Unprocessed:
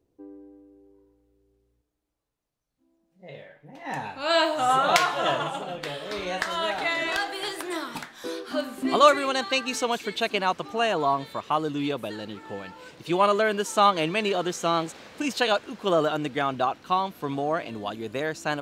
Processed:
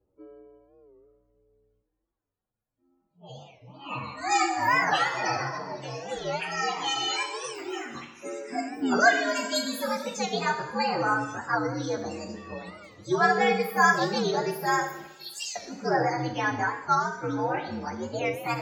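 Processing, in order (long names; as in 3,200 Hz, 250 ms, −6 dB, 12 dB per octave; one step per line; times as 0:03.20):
partials spread apart or drawn together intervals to 120%
0:15.07–0:15.57: Chebyshev high-pass filter 2,700 Hz, order 4
spectral peaks only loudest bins 64
coupled-rooms reverb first 0.8 s, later 2.1 s, DRR 3.5 dB
wow of a warped record 45 rpm, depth 160 cents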